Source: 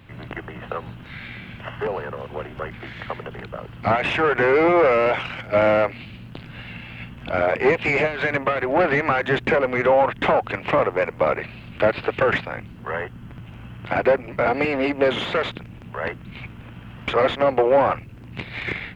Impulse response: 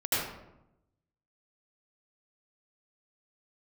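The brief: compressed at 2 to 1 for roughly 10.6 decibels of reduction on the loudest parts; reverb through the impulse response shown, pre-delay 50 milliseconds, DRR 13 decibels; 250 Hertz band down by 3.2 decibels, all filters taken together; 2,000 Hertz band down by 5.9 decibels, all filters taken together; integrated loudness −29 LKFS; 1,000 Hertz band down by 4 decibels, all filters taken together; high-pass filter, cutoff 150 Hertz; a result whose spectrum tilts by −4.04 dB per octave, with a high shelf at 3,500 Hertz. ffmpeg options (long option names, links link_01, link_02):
-filter_complex "[0:a]highpass=150,equalizer=frequency=250:width_type=o:gain=-3.5,equalizer=frequency=1000:width_type=o:gain=-3.5,equalizer=frequency=2000:width_type=o:gain=-4,highshelf=frequency=3500:gain=-8,acompressor=threshold=-35dB:ratio=2,asplit=2[link_01][link_02];[1:a]atrim=start_sample=2205,adelay=50[link_03];[link_02][link_03]afir=irnorm=-1:irlink=0,volume=-23dB[link_04];[link_01][link_04]amix=inputs=2:normalize=0,volume=5dB"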